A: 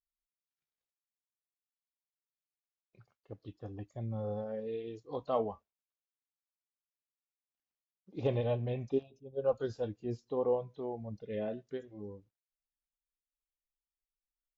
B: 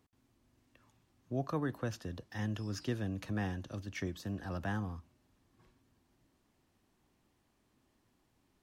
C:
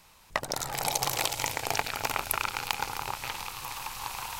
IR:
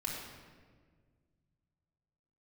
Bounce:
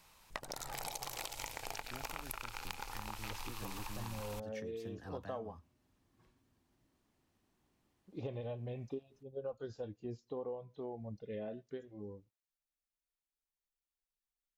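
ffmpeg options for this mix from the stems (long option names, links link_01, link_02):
-filter_complex "[0:a]volume=-2dB[link_01];[1:a]alimiter=level_in=10dB:limit=-24dB:level=0:latency=1:release=492,volume=-10dB,adelay=600,volume=-3.5dB[link_02];[2:a]asubboost=boost=8:cutoff=50,volume=-6.5dB[link_03];[link_01][link_02][link_03]amix=inputs=3:normalize=0,acompressor=threshold=-39dB:ratio=6"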